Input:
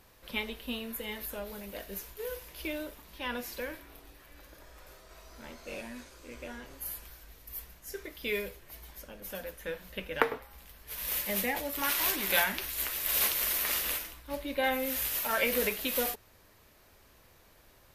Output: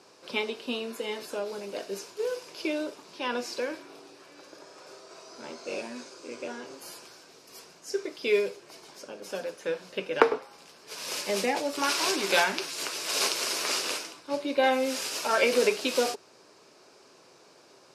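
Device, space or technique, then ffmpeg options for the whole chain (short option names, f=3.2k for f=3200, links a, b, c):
television speaker: -af "highpass=f=170:w=0.5412,highpass=f=170:w=1.3066,equalizer=f=210:t=q:w=4:g=-7,equalizer=f=390:t=q:w=4:g=6,equalizer=f=1.9k:t=q:w=4:g=-9,equalizer=f=3.3k:t=q:w=4:g=-5,equalizer=f=5.1k:t=q:w=4:g=6,lowpass=f=8.3k:w=0.5412,lowpass=f=8.3k:w=1.3066,volume=6.5dB"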